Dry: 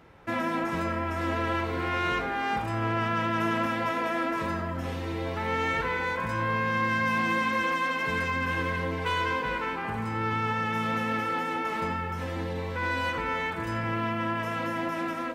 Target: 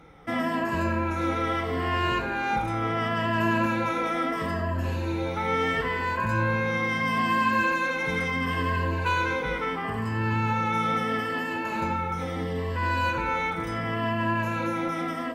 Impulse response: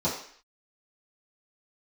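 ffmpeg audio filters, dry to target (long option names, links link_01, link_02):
-af "afftfilt=real='re*pow(10,11/40*sin(2*PI*(1.4*log(max(b,1)*sr/1024/100)/log(2)-(-0.74)*(pts-256)/sr)))':imag='im*pow(10,11/40*sin(2*PI*(1.4*log(max(b,1)*sr/1024/100)/log(2)-(-0.74)*(pts-256)/sr)))':win_size=1024:overlap=0.75,lowshelf=frequency=320:gain=3"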